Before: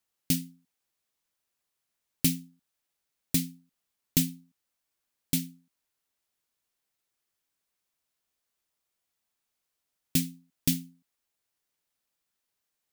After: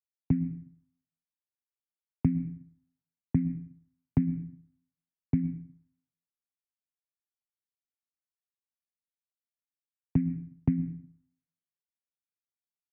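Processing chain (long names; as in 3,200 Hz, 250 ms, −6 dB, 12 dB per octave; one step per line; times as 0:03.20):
Butterworth low-pass 2,200 Hz 72 dB per octave
spectral tilt −4 dB per octave
hum removal 167.4 Hz, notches 3
on a send at −16 dB: convolution reverb RT60 0.65 s, pre-delay 99 ms
on the sum: downward compressor 10 to 1, threshold −22 dBFS, peak gain reduction 11.5 dB
high-pass filter 84 Hz
parametric band 510 Hz −12 dB 0.34 octaves
multiband upward and downward expander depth 70%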